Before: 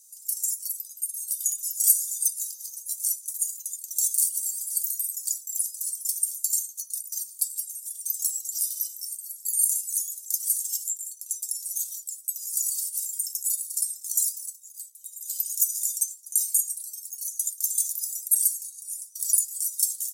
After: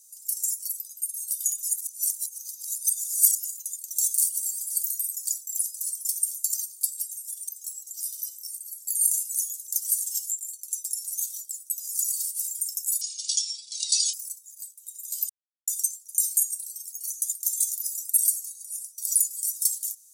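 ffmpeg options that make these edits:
ffmpeg -i in.wav -filter_complex "[0:a]asplit=9[link_01][link_02][link_03][link_04][link_05][link_06][link_07][link_08][link_09];[link_01]atrim=end=1.692[link_10];[link_02]atrim=start=1.688:end=3.462,asetpts=PTS-STARTPTS,areverse[link_11];[link_03]atrim=start=3.458:end=6.542[link_12];[link_04]atrim=start=7.118:end=8.07,asetpts=PTS-STARTPTS,afade=type=out:start_time=0.948:duration=0.004:curve=hsin:silence=0.237137[link_13];[link_05]atrim=start=8.07:end=13.594,asetpts=PTS-STARTPTS,afade=type=in:duration=1.42:silence=0.237137[link_14];[link_06]atrim=start=13.59:end=14.31,asetpts=PTS-STARTPTS,asetrate=28224,aresample=44100,atrim=end_sample=49612,asetpts=PTS-STARTPTS[link_15];[link_07]atrim=start=14.306:end=15.47,asetpts=PTS-STARTPTS,afade=type=out:start_time=1.16:duration=0.004:curve=hsin[link_16];[link_08]atrim=start=15.47:end=15.85,asetpts=PTS-STARTPTS,volume=0[link_17];[link_09]atrim=start=15.85,asetpts=PTS-STARTPTS,afade=type=in:duration=0.004:curve=hsin[link_18];[link_10][link_11]acrossfade=duration=0.004:curve1=hsin:curve2=hsin[link_19];[link_19][link_12]acrossfade=duration=0.004:curve1=hsin:curve2=hsin[link_20];[link_13][link_14]concat=n=2:v=0:a=1[link_21];[link_20][link_21]acrossfade=duration=0.004:curve1=hsin:curve2=hsin[link_22];[link_22][link_15]acrossfade=duration=0.004:curve1=hsin:curve2=hsin[link_23];[link_16][link_17][link_18]concat=n=3:v=0:a=1[link_24];[link_23][link_24]acrossfade=duration=0.004:curve1=hsin:curve2=hsin" out.wav

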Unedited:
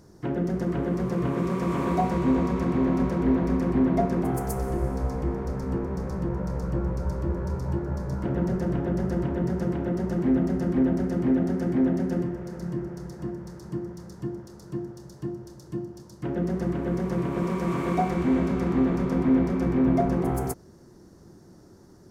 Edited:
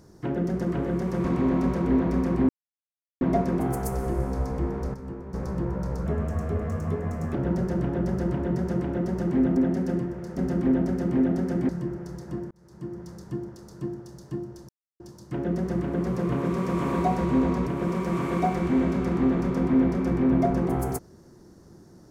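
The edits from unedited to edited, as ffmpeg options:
ffmpeg -i in.wav -filter_complex "[0:a]asplit=16[link_01][link_02][link_03][link_04][link_05][link_06][link_07][link_08][link_09][link_10][link_11][link_12][link_13][link_14][link_15][link_16];[link_01]atrim=end=0.872[link_17];[link_02]atrim=start=16.848:end=17.222[link_18];[link_03]atrim=start=2.598:end=3.85,asetpts=PTS-STARTPTS,afade=type=out:start_time=1.248:duration=0.004:curve=hsin,apad=pad_dur=0.72[link_19];[link_04]atrim=start=3.85:end=5.582,asetpts=PTS-STARTPTS,afade=type=in:duration=0.004:curve=hsin[link_20];[link_05]atrim=start=5.578:end=5.982,asetpts=PTS-STARTPTS,volume=-8.5dB[link_21];[link_06]atrim=start=5.978:end=6.704[link_22];[link_07]atrim=start=6.7:end=8.26,asetpts=PTS-STARTPTS,asetrate=53361,aresample=44100,atrim=end_sample=56856,asetpts=PTS-STARTPTS[link_23];[link_08]atrim=start=8.256:end=10.482[link_24];[link_09]atrim=start=11.798:end=12.602[link_25];[link_10]atrim=start=10.478:end=11.802[link_26];[link_11]atrim=start=12.598:end=13.42,asetpts=PTS-STARTPTS,afade=type=out:start_time=0.818:duration=0.004:curve=hsin[link_27];[link_12]atrim=start=13.42:end=15.6,asetpts=PTS-STARTPTS,afade=type=in:duration=0.56,afade=type=out:start_time=2.176:duration=0.004:curve=hsin[link_28];[link_13]atrim=start=15.6:end=15.91,asetpts=PTS-STARTPTS,volume=0[link_29];[link_14]atrim=start=15.91:end=16.852,asetpts=PTS-STARTPTS,afade=type=in:duration=0.004:curve=hsin[link_30];[link_15]atrim=start=0.868:end=2.602[link_31];[link_16]atrim=start=17.218[link_32];[link_17][link_18]acrossfade=duration=0.004:curve1=hsin:curve2=hsin[link_33];[link_19][link_20]concat=n=2:v=0:a=1[link_34];[link_33][link_34]acrossfade=duration=0.004:curve1=hsin:curve2=hsin[link_35];[link_35][link_21]acrossfade=duration=0.004:curve1=hsin:curve2=hsin[link_36];[link_36][link_22]acrossfade=duration=0.004:curve1=hsin:curve2=hsin[link_37];[link_37][link_23]acrossfade=duration=0.004:curve1=hsin:curve2=hsin[link_38];[link_38][link_24]acrossfade=duration=0.004:curve1=hsin:curve2=hsin[link_39];[link_39][link_25]acrossfade=duration=0.004:curve1=hsin:curve2=hsin[link_40];[link_40][link_26]acrossfade=duration=0.004:curve1=hsin:curve2=hsin[link_41];[link_27][link_28][link_29][link_30]concat=n=4:v=0:a=1[link_42];[link_41][link_42]acrossfade=duration=0.004:curve1=hsin:curve2=hsin[link_43];[link_43][link_31]acrossfade=duration=0.004:curve1=hsin:curve2=hsin[link_44];[link_44][link_32]acrossfade=duration=0.004:curve1=hsin:curve2=hsin" out.wav

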